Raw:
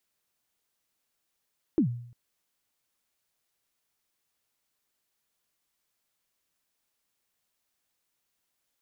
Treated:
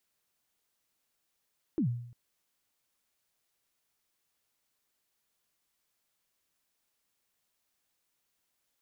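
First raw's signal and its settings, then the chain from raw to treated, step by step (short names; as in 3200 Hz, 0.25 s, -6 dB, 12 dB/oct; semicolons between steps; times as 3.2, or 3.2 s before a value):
kick drum length 0.35 s, from 360 Hz, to 120 Hz, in 97 ms, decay 0.63 s, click off, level -17 dB
limiter -25.5 dBFS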